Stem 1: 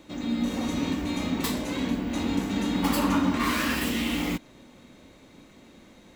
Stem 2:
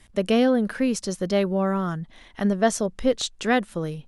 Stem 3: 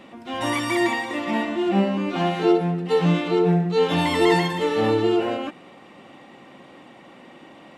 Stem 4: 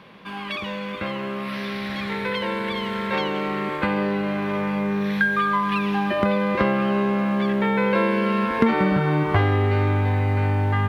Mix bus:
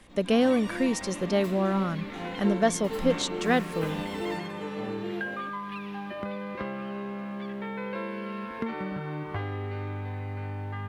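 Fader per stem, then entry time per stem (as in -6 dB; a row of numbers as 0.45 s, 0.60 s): -17.5 dB, -3.0 dB, -15.5 dB, -14.0 dB; 0.00 s, 0.00 s, 0.00 s, 0.00 s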